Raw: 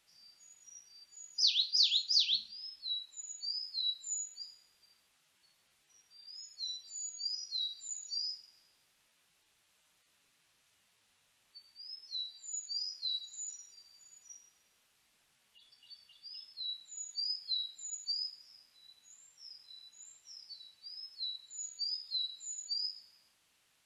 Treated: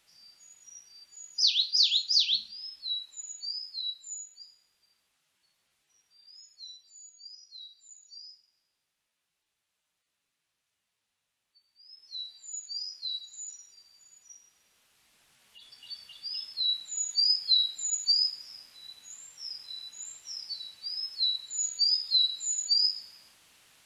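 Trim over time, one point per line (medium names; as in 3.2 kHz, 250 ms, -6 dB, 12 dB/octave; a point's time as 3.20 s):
3.20 s +4.5 dB
4.29 s -3 dB
6.37 s -3 dB
7.15 s -10 dB
11.68 s -10 dB
12.22 s +1.5 dB
14.35 s +1.5 dB
15.93 s +12 dB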